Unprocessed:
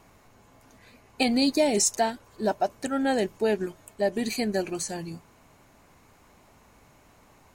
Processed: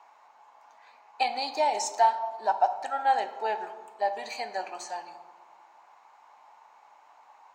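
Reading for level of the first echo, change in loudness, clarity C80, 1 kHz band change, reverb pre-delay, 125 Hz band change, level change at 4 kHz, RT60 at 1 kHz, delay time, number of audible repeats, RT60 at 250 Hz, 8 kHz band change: no echo audible, −2.0 dB, 12.0 dB, +7.0 dB, 7 ms, below −25 dB, −5.5 dB, 1.7 s, no echo audible, no echo audible, 1.9 s, −10.5 dB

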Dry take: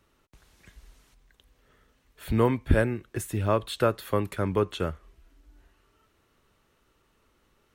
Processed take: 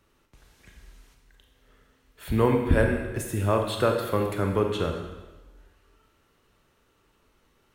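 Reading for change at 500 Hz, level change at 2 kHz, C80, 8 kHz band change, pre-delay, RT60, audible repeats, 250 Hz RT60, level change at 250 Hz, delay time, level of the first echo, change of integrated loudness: +2.0 dB, +2.5 dB, 6.5 dB, +1.5 dB, 21 ms, 1.2 s, no echo audible, 1.2 s, +2.0 dB, no echo audible, no echo audible, +2.0 dB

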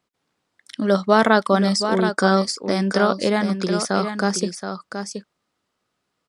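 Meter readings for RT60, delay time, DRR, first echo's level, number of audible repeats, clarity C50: no reverb audible, 725 ms, no reverb audible, −8.0 dB, 1, no reverb audible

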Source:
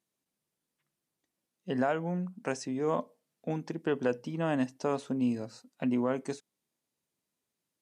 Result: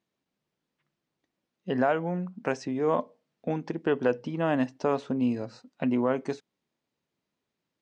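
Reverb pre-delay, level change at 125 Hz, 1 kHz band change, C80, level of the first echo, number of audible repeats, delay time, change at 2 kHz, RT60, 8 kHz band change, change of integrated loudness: no reverb audible, +2.5 dB, +4.5 dB, no reverb audible, no echo audible, no echo audible, no echo audible, +4.5 dB, no reverb audible, can't be measured, +4.0 dB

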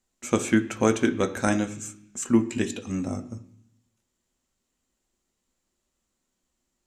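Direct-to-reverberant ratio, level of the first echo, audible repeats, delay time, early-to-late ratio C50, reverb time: 6.0 dB, no echo audible, no echo audible, no echo audible, 14.5 dB, 0.70 s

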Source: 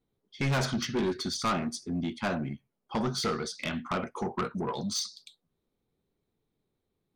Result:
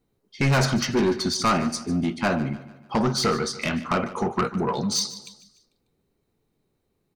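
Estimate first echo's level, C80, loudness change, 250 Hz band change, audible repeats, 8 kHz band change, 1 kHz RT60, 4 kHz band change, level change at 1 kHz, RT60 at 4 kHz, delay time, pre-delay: −16.0 dB, no reverb audible, +7.5 dB, +7.5 dB, 3, +7.5 dB, no reverb audible, +6.5 dB, +7.5 dB, no reverb audible, 148 ms, no reverb audible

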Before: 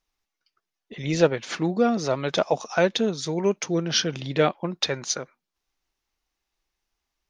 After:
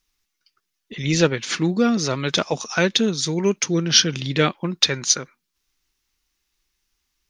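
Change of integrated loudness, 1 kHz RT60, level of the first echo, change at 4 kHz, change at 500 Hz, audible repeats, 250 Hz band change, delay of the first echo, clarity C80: +4.5 dB, no reverb audible, no echo audible, +8.0 dB, 0.0 dB, no echo audible, +4.5 dB, no echo audible, no reverb audible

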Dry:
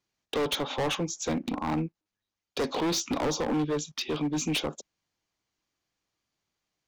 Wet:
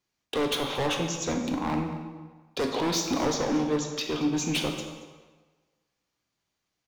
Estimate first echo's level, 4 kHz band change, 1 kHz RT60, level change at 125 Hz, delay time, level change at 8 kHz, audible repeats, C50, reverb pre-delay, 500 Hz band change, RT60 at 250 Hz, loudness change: −16.5 dB, +1.5 dB, 1.4 s, +1.5 dB, 228 ms, +1.5 dB, 1, 5.0 dB, 8 ms, +1.5 dB, 1.2 s, +1.5 dB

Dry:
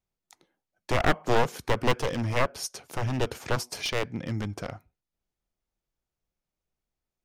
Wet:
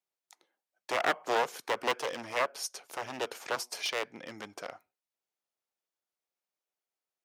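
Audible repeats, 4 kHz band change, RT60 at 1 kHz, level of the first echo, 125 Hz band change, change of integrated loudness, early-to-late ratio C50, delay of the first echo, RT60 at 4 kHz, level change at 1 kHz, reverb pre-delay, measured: no echo audible, −2.5 dB, no reverb audible, no echo audible, −26.0 dB, −4.5 dB, no reverb audible, no echo audible, no reverb audible, −3.0 dB, no reverb audible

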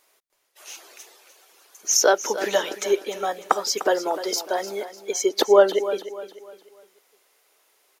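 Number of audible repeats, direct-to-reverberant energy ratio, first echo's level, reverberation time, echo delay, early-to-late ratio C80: 3, no reverb audible, −13.0 dB, no reverb audible, 300 ms, no reverb audible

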